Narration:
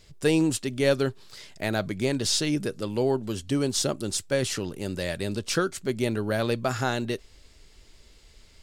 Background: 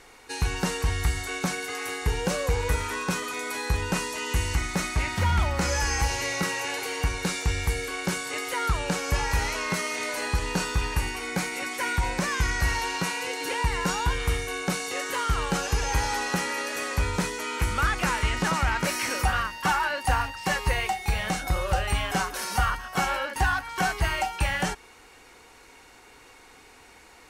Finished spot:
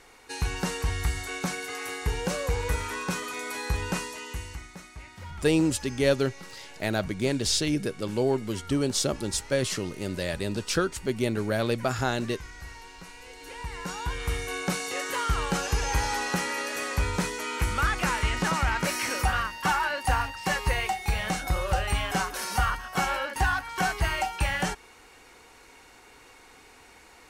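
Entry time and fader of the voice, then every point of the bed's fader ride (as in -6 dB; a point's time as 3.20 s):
5.20 s, -0.5 dB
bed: 3.93 s -2.5 dB
4.82 s -18 dB
13.07 s -18 dB
14.53 s -1 dB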